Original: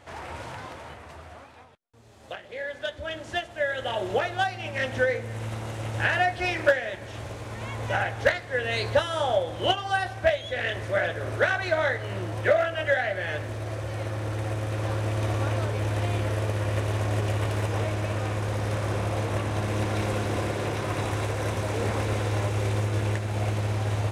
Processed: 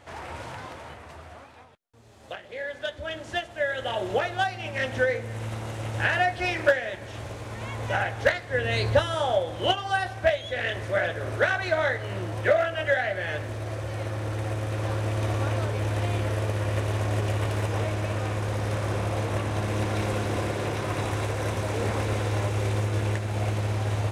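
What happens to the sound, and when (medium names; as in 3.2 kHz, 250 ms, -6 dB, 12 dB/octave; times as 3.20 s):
8.50–9.15 s: bass shelf 230 Hz +7.5 dB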